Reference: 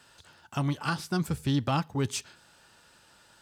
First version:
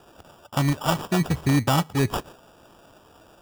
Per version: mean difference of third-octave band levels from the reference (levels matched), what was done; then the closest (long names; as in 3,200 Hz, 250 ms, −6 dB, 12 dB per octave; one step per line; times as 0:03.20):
6.0 dB: decimation without filtering 21×
level +6.5 dB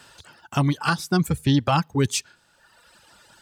4.0 dB: reverb reduction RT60 1.3 s
level +8.5 dB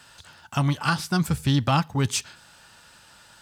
1.5 dB: parametric band 380 Hz −6.5 dB 1.2 octaves
level +7.5 dB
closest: third